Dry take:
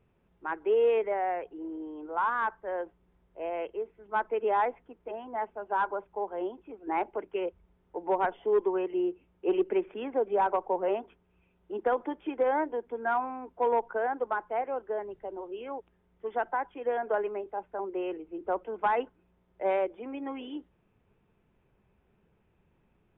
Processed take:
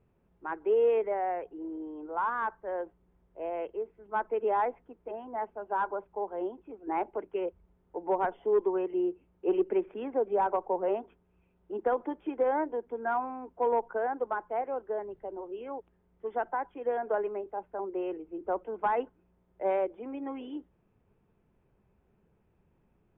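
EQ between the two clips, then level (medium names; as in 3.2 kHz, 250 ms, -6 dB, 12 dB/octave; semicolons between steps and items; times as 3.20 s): treble shelf 2.2 kHz -11 dB; 0.0 dB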